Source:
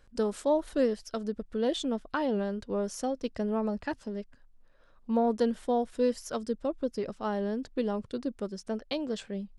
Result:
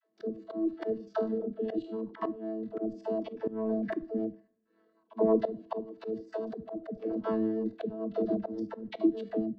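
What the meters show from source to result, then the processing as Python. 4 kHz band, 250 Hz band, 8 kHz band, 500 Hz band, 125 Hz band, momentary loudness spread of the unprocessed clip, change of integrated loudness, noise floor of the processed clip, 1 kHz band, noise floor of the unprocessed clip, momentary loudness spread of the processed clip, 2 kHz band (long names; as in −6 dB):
below −10 dB, −1.0 dB, below −25 dB, −2.0 dB, can't be measured, 8 LU, −2.0 dB, −72 dBFS, −6.0 dB, −59 dBFS, 9 LU, −7.5 dB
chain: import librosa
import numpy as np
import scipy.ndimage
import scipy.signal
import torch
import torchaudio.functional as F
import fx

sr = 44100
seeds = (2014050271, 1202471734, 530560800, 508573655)

y = fx.chord_vocoder(x, sr, chord='bare fifth', root=57)
y = scipy.signal.sosfilt(scipy.signal.butter(2, 3700.0, 'lowpass', fs=sr, output='sos'), y)
y = fx.peak_eq(y, sr, hz=500.0, db=7.0, octaves=0.38)
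y = fx.room_flutter(y, sr, wall_m=4.2, rt60_s=0.34)
y = fx.level_steps(y, sr, step_db=13)
y = fx.dynamic_eq(y, sr, hz=140.0, q=3.4, threshold_db=-56.0, ratio=4.0, max_db=-6)
y = fx.transient(y, sr, attack_db=9, sustain_db=-5)
y = fx.rider(y, sr, range_db=5, speed_s=0.5)
y = fx.rotary_switch(y, sr, hz=0.8, then_hz=7.0, switch_at_s=4.25)
y = fx.dispersion(y, sr, late='lows', ms=103.0, hz=300.0)
y = fx.auto_swell(y, sr, attack_ms=217.0)
y = fx.rev_double_slope(y, sr, seeds[0], early_s=0.45, late_s=1.6, knee_db=-20, drr_db=19.0)
y = y * 10.0 ** (6.0 / 20.0)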